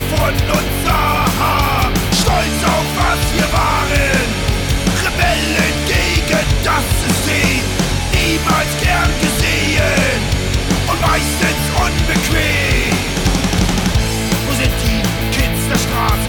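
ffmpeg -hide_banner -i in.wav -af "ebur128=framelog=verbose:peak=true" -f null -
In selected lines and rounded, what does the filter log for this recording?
Integrated loudness:
  I:         -14.6 LUFS
  Threshold: -24.6 LUFS
Loudness range:
  LRA:         0.8 LU
  Threshold: -34.5 LUFS
  LRA low:   -14.9 LUFS
  LRA high:  -14.1 LUFS
True peak:
  Peak:       -4.7 dBFS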